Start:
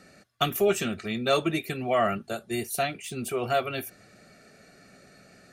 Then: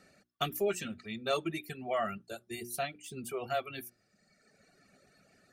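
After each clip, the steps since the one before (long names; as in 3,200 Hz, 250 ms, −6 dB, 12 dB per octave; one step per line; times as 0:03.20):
reverb reduction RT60 1.4 s
mains-hum notches 60/120/180/240/300/360 Hz
level −7.5 dB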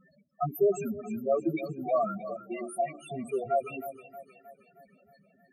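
spectral peaks only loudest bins 4
echo with a time of its own for lows and highs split 450 Hz, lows 161 ms, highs 313 ms, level −13 dB
level +7.5 dB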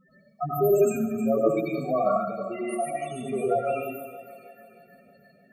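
dense smooth reverb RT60 0.54 s, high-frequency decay 0.95×, pre-delay 80 ms, DRR −5.5 dB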